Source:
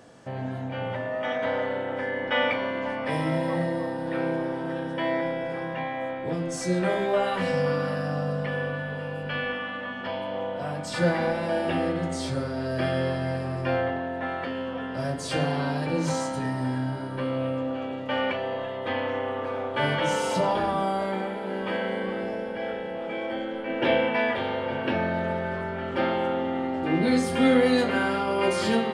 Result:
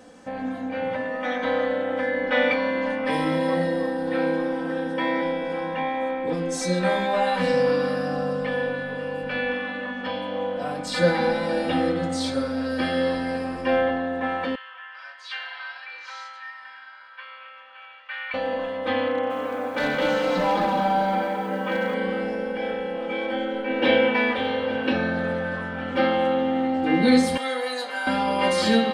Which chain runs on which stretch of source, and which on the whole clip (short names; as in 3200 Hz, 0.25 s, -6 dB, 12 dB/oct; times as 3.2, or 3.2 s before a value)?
14.55–18.34 HPF 1300 Hz 24 dB/oct + air absorption 270 m
19.08–21.94 BPF 120–3000 Hz + hard clip -21 dBFS + lo-fi delay 0.22 s, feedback 35%, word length 9-bit, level -5.5 dB
27.37–28.07 HPF 1000 Hz + bell 2500 Hz -8 dB 1.8 oct
whole clip: comb 3.9 ms, depth 97%; dynamic EQ 4000 Hz, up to +8 dB, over -54 dBFS, Q 4.2